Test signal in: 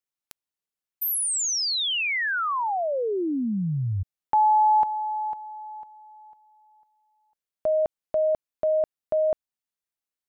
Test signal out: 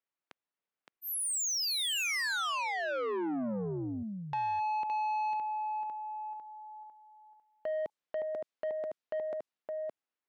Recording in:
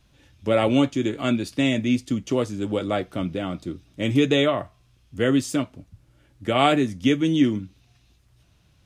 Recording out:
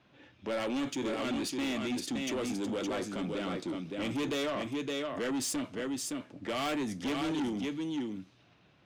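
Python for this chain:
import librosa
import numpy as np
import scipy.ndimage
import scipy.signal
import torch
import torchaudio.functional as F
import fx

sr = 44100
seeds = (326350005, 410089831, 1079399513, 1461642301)

p1 = fx.over_compress(x, sr, threshold_db=-32.0, ratio=-1.0)
p2 = x + (p1 * librosa.db_to_amplitude(-3.0))
p3 = fx.env_lowpass(p2, sr, base_hz=2400.0, full_db=-18.5)
p4 = fx.dynamic_eq(p3, sr, hz=750.0, q=1.7, threshold_db=-34.0, ratio=4.0, max_db=-5)
p5 = scipy.signal.sosfilt(scipy.signal.butter(2, 220.0, 'highpass', fs=sr, output='sos'), p4)
p6 = p5 + fx.echo_single(p5, sr, ms=566, db=-5.5, dry=0)
p7 = 10.0 ** (-23.5 / 20.0) * np.tanh(p6 / 10.0 ** (-23.5 / 20.0))
y = p7 * librosa.db_to_amplitude(-6.0)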